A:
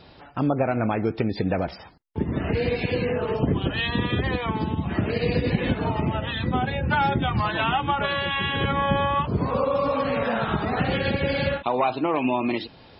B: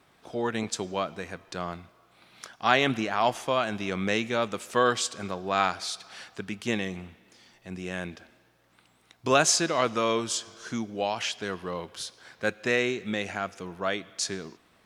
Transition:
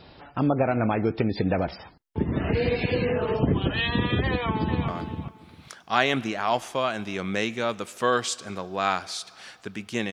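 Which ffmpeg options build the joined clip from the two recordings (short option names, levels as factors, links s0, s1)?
-filter_complex "[0:a]apad=whole_dur=10.12,atrim=end=10.12,atrim=end=4.882[s0];[1:a]atrim=start=1.608:end=6.85[s1];[s0][s1]acrossfade=d=0.004:c1=hsin:c2=hsin,asplit=2[s2][s3];[s3]afade=t=in:st=4.28:d=0.01,afade=t=out:st=4.88:d=0.01,aecho=0:1:400|800|1200:0.446684|0.0670025|0.0100504[s4];[s2][s4]amix=inputs=2:normalize=0"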